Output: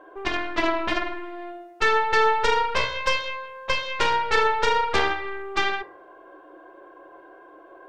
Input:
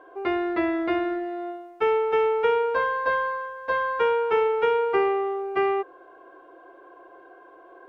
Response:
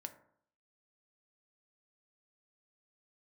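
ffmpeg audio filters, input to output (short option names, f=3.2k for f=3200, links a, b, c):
-filter_complex "[0:a]aeval=exprs='0.266*(cos(1*acos(clip(val(0)/0.266,-1,1)))-cos(1*PI/2))+0.0266*(cos(3*acos(clip(val(0)/0.266,-1,1)))-cos(3*PI/2))+0.0841*(cos(4*acos(clip(val(0)/0.266,-1,1)))-cos(4*PI/2))+0.075*(cos(7*acos(clip(val(0)/0.266,-1,1)))-cos(7*PI/2))':c=same,aeval=exprs='clip(val(0),-1,0.0355)':c=same[a];[1:a]atrim=start_sample=2205[b];[a][b]afir=irnorm=-1:irlink=0,volume=4dB"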